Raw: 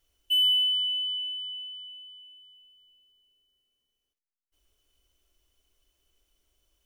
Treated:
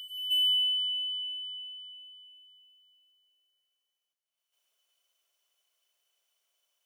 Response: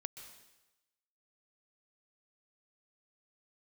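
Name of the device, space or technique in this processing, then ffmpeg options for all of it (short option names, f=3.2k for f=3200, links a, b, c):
ghost voice: -filter_complex "[0:a]areverse[a];[1:a]atrim=start_sample=2205[b];[a][b]afir=irnorm=-1:irlink=0,areverse,highpass=f=580:w=0.5412,highpass=f=580:w=1.3066,volume=1dB"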